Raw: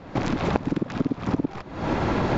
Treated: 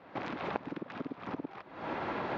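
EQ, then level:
high-pass filter 670 Hz 6 dB per octave
low-pass filter 3,500 Hz 12 dB per octave
high-frequency loss of the air 69 metres
−6.5 dB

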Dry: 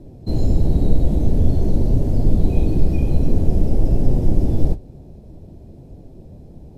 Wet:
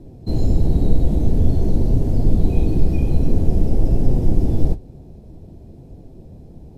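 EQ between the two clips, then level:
notch filter 580 Hz, Q 16
0.0 dB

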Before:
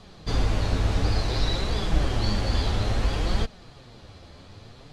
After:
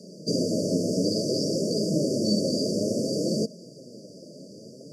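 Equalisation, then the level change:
Butterworth high-pass 160 Hz 36 dB per octave
linear-phase brick-wall band-stop 660–4,500 Hz
+8.0 dB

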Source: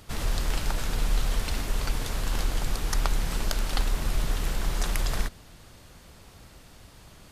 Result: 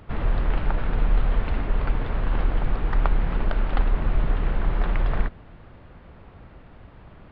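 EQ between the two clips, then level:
Gaussian smoothing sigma 3.7 samples
+5.0 dB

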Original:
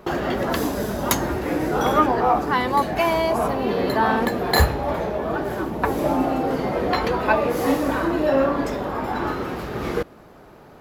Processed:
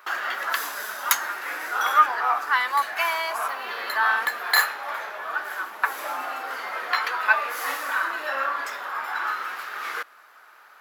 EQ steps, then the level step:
high-pass with resonance 1,400 Hz, resonance Q 2.3
high-shelf EQ 11,000 Hz +6 dB
−1.5 dB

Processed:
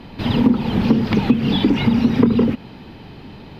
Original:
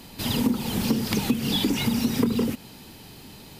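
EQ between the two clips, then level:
high-frequency loss of the air 350 metres
+9.0 dB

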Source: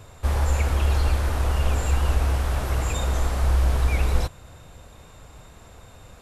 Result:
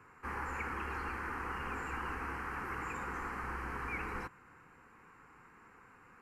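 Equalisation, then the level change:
three-way crossover with the lows and the highs turned down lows −20 dB, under 180 Hz, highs −20 dB, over 3,200 Hz
low-shelf EQ 320 Hz −6.5 dB
phaser with its sweep stopped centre 1,500 Hz, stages 4
−2.0 dB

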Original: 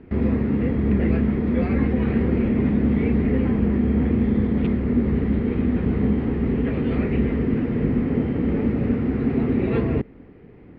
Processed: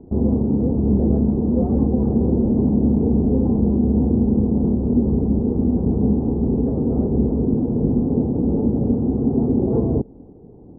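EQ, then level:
Chebyshev low-pass filter 860 Hz, order 4
+3.0 dB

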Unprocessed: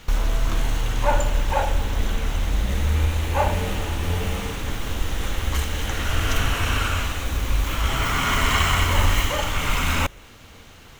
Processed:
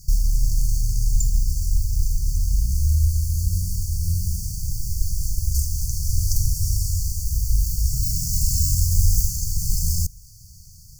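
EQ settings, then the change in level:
linear-phase brick-wall band-stop 180–4,400 Hz
high-shelf EQ 5,100 Hz +5.5 dB
+2.5 dB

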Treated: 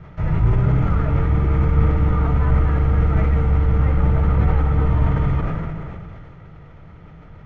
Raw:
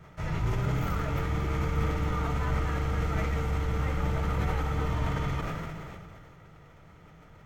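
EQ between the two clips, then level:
low-shelf EQ 200 Hz +7 dB
dynamic equaliser 4,400 Hz, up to −7 dB, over −57 dBFS, Q 0.72
high-frequency loss of the air 190 metres
+7.0 dB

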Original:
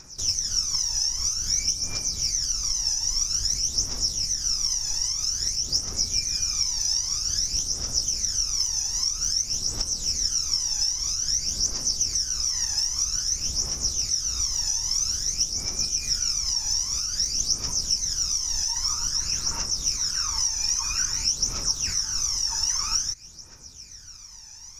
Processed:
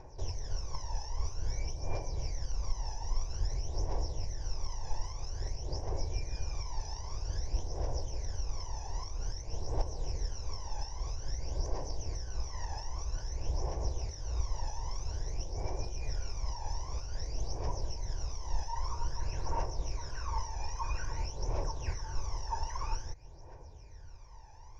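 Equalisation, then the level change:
low-pass with resonance 1,100 Hz, resonance Q 2.4
phaser with its sweep stopped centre 530 Hz, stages 4
+4.5 dB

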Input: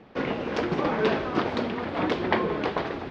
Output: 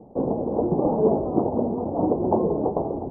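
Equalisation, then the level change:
Butterworth low-pass 870 Hz 48 dB per octave
+5.0 dB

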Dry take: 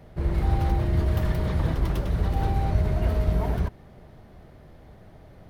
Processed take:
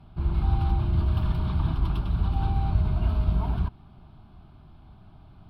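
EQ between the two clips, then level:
high-frequency loss of the air 52 metres
phaser with its sweep stopped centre 1,900 Hz, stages 6
0.0 dB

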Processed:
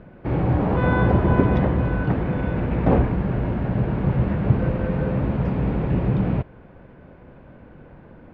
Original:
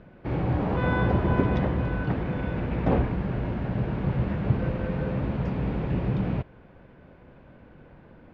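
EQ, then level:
high-shelf EQ 3,500 Hz −10.5 dB
+5.5 dB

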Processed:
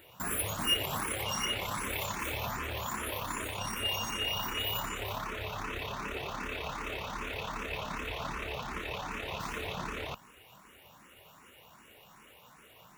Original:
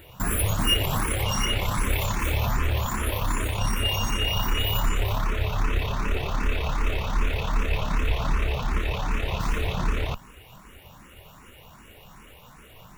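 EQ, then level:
high-pass filter 300 Hz 6 dB per octave
−5.5 dB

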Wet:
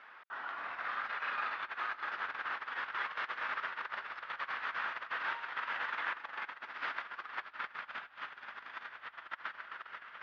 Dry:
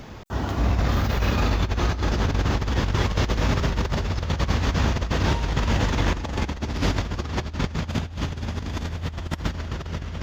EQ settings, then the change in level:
four-pole ladder band-pass 1,700 Hz, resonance 45%
high-frequency loss of the air 230 metres
+5.5 dB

